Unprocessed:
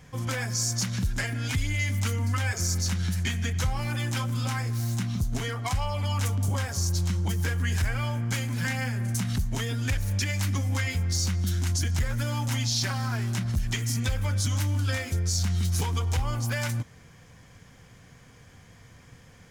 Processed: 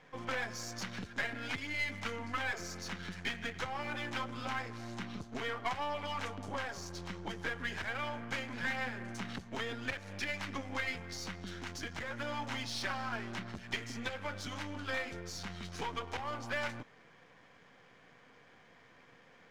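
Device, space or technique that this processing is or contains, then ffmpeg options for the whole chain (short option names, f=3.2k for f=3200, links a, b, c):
crystal radio: -af "highpass=320,lowpass=2.9k,aeval=exprs='if(lt(val(0),0),0.447*val(0),val(0))':c=same"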